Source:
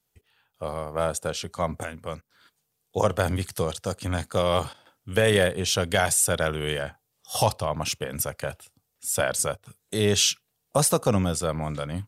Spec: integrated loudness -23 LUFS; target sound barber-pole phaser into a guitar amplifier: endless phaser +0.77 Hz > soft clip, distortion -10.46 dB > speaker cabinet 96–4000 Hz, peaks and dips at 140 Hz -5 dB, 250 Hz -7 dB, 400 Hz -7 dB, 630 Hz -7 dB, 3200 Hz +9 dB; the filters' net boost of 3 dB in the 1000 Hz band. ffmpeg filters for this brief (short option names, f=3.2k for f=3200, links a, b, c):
-filter_complex "[0:a]equalizer=f=1k:t=o:g=5.5,asplit=2[a][b];[b]afreqshift=0.77[c];[a][c]amix=inputs=2:normalize=1,asoftclip=threshold=-21dB,highpass=96,equalizer=f=140:t=q:w=4:g=-5,equalizer=f=250:t=q:w=4:g=-7,equalizer=f=400:t=q:w=4:g=-7,equalizer=f=630:t=q:w=4:g=-7,equalizer=f=3.2k:t=q:w=4:g=9,lowpass=f=4k:w=0.5412,lowpass=f=4k:w=1.3066,volume=9.5dB"